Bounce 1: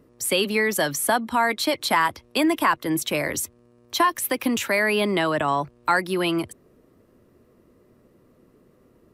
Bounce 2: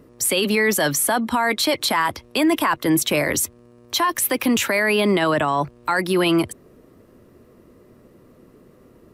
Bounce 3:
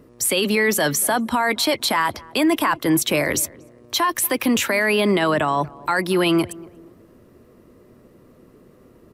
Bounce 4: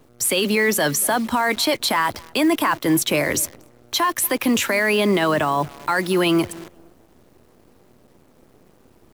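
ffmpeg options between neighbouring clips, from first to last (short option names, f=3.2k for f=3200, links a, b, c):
-af "alimiter=limit=-18dB:level=0:latency=1:release=15,volume=7dB"
-filter_complex "[0:a]asplit=2[a][b];[b]adelay=236,lowpass=f=1k:p=1,volume=-20dB,asplit=2[c][d];[d]adelay=236,lowpass=f=1k:p=1,volume=0.41,asplit=2[e][f];[f]adelay=236,lowpass=f=1k:p=1,volume=0.41[g];[a][c][e][g]amix=inputs=4:normalize=0"
-af "acrusher=bits=7:dc=4:mix=0:aa=0.000001"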